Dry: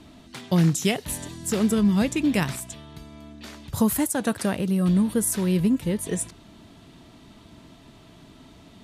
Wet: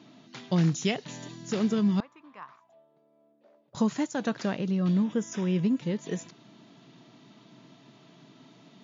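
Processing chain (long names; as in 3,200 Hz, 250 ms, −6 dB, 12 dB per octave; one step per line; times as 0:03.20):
brick-wall band-pass 110–7,200 Hz
0:02.00–0:03.75: envelope filter 460–1,100 Hz, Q 6.7, up, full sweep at −25.5 dBFS
0:05.04–0:05.63: Butterworth band-reject 4,300 Hz, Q 3.8
level −4.5 dB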